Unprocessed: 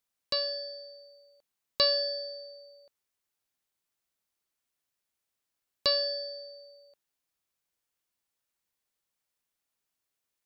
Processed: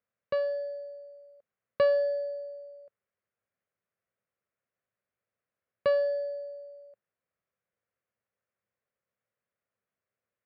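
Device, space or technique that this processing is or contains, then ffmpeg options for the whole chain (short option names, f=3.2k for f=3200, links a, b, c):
bass cabinet: -af "highpass=72,equalizer=f=110:t=q:w=4:g=6,equalizer=f=200:t=q:w=4:g=3,equalizer=f=300:t=q:w=4:g=-8,equalizer=f=550:t=q:w=4:g=4,equalizer=f=880:t=q:w=4:g=-8,lowpass=f=2.1k:w=0.5412,lowpass=f=2.1k:w=1.3066,equalizer=f=500:t=o:w=0.66:g=3.5,volume=2dB"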